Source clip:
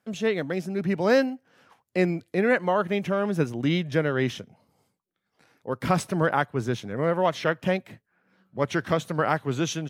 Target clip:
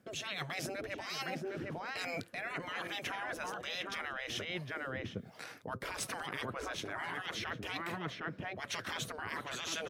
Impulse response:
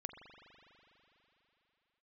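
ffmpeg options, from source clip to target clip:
-filter_complex "[0:a]equalizer=f=880:w=3.7:g=-5,asplit=2[a][b];[b]adelay=758,volume=-9dB,highshelf=f=4k:g=-17.1[c];[a][c]amix=inputs=2:normalize=0,acrossover=split=500[d][e];[d]aeval=exprs='val(0)*(1-0.7/2+0.7/2*cos(2*PI*1.2*n/s))':c=same[f];[e]aeval=exprs='val(0)*(1-0.7/2-0.7/2*cos(2*PI*1.2*n/s))':c=same[g];[f][g]amix=inputs=2:normalize=0,asplit=2[h][i];[i]alimiter=level_in=1dB:limit=-24dB:level=0:latency=1:release=76,volume=-1dB,volume=-1dB[j];[h][j]amix=inputs=2:normalize=0,afftfilt=real='re*lt(hypot(re,im),0.0891)':imag='im*lt(hypot(re,im),0.0891)':win_size=1024:overlap=0.75,areverse,acompressor=threshold=-46dB:ratio=16,areverse,volume=10dB"

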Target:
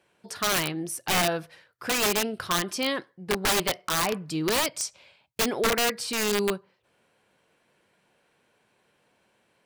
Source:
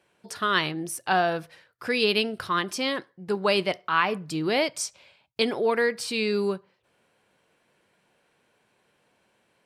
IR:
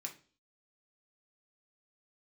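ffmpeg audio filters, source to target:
-af "aeval=exprs='(mod(7.94*val(0)+1,2)-1)/7.94':c=same"

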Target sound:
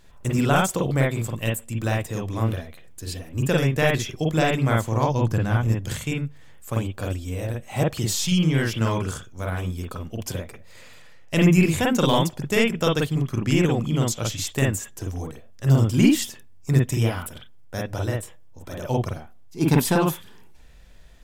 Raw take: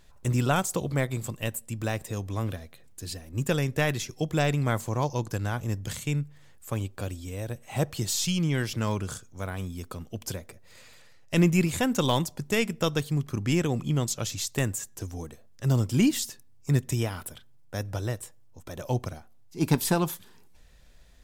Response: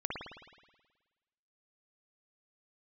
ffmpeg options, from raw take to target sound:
-filter_complex "[0:a]asettb=1/sr,asplit=3[a][b][c];[a]atrim=end=5.064[d];[b]atrim=start=5.06:end=5.68,asetpts=PTS-STARTPTS,afade=t=in:d=0.004:c=qsin,afade=t=out:st=0.616:d=0.004:c=qsin,bass=f=250:g=6,treble=f=4k:g=-4[e];[c]atrim=start=5.676[f];[d][e]acrossfade=d=0.004:c1=hsin:c2=qsin[g];[g][f]acrossfade=d=0.004:c1=qsin:c2=hsin[h];[1:a]atrim=start_sample=2205,atrim=end_sample=3087,asetrate=52920,aresample=44100[i];[h][i]afir=irnorm=-1:irlink=0,volume=5.5dB"

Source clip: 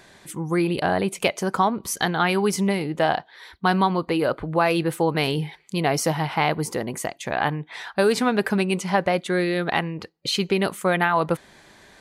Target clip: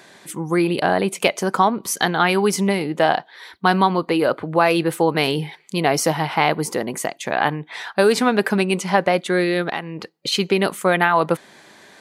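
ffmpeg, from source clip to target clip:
-filter_complex "[0:a]highpass=170,asettb=1/sr,asplit=3[a][b][c];[a]atrim=end=9.614[d];[b]atrim=start=9.61:end=10.32,asetpts=PTS-STARTPTS,afade=t=in:d=0.004:c=qsin,afade=t=out:st=0.706:d=0.004:c=qsin,acompressor=threshold=-25dB:ratio=10[e];[c]atrim=start=10.316[f];[d][e]acrossfade=d=0.004:c1=hsin:c2=qsin[g];[g][f]acrossfade=d=0.004:c1=qsin:c2=hsin,volume=4dB"

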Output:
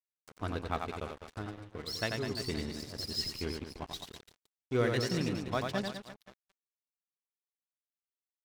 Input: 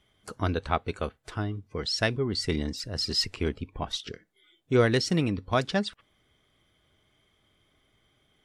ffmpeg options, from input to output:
-af "aecho=1:1:90|202.5|343.1|518.9|738.6:0.631|0.398|0.251|0.158|0.1,aeval=exprs='sgn(val(0))*max(abs(val(0))-0.0141,0)':c=same,volume=-7.5dB"

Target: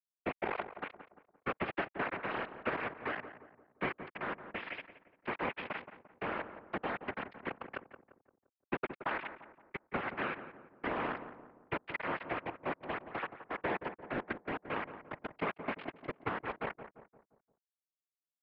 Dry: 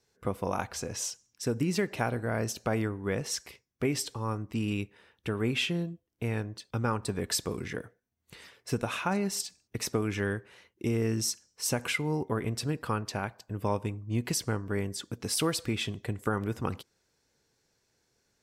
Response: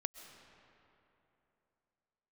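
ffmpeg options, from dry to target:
-filter_complex "[0:a]deesser=0.65,equalizer=f=590:w=7.6:g=5.5,acompressor=threshold=-38dB:ratio=2,aresample=11025,acrusher=bits=4:mix=0:aa=0.000001,aresample=44100,crystalizer=i=5:c=0,asoftclip=type=hard:threshold=-28dB,highpass=f=290:t=q:w=0.5412,highpass=f=290:t=q:w=1.307,lowpass=f=2.4k:t=q:w=0.5176,lowpass=f=2.4k:t=q:w=0.7071,lowpass=f=2.4k:t=q:w=1.932,afreqshift=-95,afftfilt=real='hypot(re,im)*cos(2*PI*random(0))':imag='hypot(re,im)*sin(2*PI*random(1))':win_size=512:overlap=0.75,asplit=2[a][b];[b]adelay=173,lowpass=f=1.3k:p=1,volume=-10dB,asplit=2[c][d];[d]adelay=173,lowpass=f=1.3k:p=1,volume=0.48,asplit=2[e][f];[f]adelay=173,lowpass=f=1.3k:p=1,volume=0.48,asplit=2[g][h];[h]adelay=173,lowpass=f=1.3k:p=1,volume=0.48,asplit=2[i][j];[j]adelay=173,lowpass=f=1.3k:p=1,volume=0.48[k];[a][c][e][g][i][k]amix=inputs=6:normalize=0,volume=12dB"

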